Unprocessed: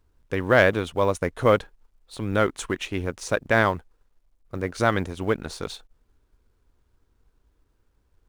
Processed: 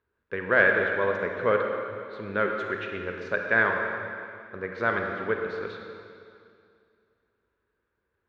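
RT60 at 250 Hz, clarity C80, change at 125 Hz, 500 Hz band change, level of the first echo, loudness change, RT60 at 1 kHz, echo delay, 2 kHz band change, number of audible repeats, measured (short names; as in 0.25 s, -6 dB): 2.5 s, 4.0 dB, -11.5 dB, -3.5 dB, none, -2.5 dB, 2.4 s, none, +2.5 dB, none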